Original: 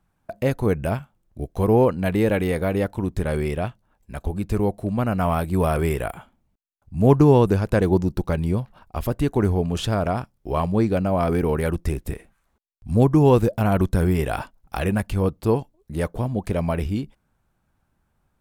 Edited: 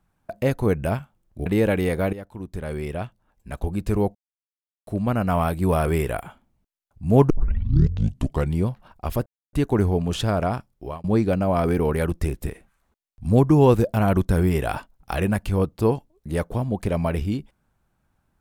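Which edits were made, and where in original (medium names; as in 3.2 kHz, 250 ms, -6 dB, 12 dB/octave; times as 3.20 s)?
1.46–2.09 s: delete
2.76–4.22 s: fade in, from -15.5 dB
4.78 s: insert silence 0.72 s
7.21 s: tape start 1.27 s
9.17 s: insert silence 0.27 s
10.33–10.68 s: fade out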